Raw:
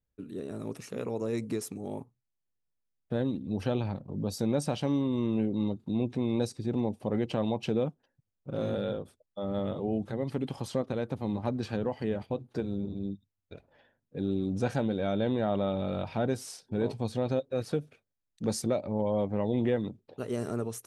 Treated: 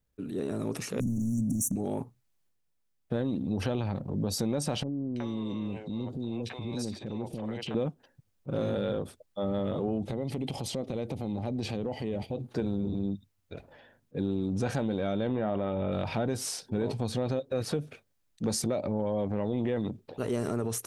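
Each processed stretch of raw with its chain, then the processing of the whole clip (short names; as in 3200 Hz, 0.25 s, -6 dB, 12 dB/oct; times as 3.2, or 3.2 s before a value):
1–1.76 sample leveller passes 3 + brick-wall FIR band-stop 300–5600 Hz
4.83–7.75 bell 3600 Hz +6 dB 2 oct + compressor 3:1, threshold -38 dBFS + three bands offset in time lows, highs, mids 0.33/0.37 s, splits 510/2800 Hz
10.03–12.42 band shelf 1300 Hz -11 dB 1 oct + compressor 2.5:1, threshold -36 dBFS
15.27–15.92 polynomial smoothing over 25 samples + doubler 23 ms -13 dB
whole clip: transient shaper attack -3 dB, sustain +5 dB; compressor, threshold -32 dBFS; gain +6 dB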